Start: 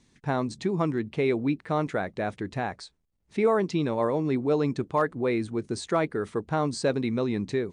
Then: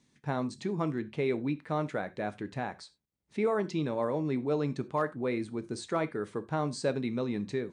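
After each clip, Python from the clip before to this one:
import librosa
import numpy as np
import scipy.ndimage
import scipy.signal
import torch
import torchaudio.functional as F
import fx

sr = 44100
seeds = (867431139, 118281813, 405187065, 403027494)

y = scipy.signal.sosfilt(scipy.signal.butter(2, 90.0, 'highpass', fs=sr, output='sos'), x)
y = fx.rev_gated(y, sr, seeds[0], gate_ms=120, shape='falling', drr_db=11.5)
y = F.gain(torch.from_numpy(y), -5.5).numpy()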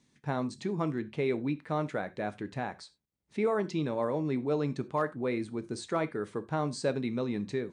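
y = x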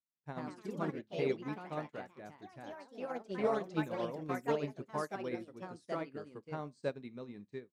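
y = fx.echo_pitch(x, sr, ms=136, semitones=3, count=3, db_per_echo=-3.0)
y = fx.upward_expand(y, sr, threshold_db=-50.0, expansion=2.5)
y = F.gain(torch.from_numpy(y), -3.0).numpy()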